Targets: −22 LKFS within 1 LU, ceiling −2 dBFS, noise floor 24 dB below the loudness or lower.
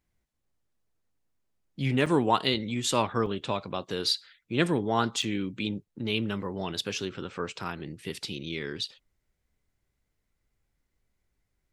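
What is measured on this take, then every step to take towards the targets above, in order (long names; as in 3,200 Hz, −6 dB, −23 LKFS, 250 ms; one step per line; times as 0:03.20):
number of dropouts 3; longest dropout 5.1 ms; integrated loudness −30.0 LKFS; sample peak −9.0 dBFS; target loudness −22.0 LKFS
→ repair the gap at 0:02.06/0:03.26/0:05.22, 5.1 ms
level +8 dB
brickwall limiter −2 dBFS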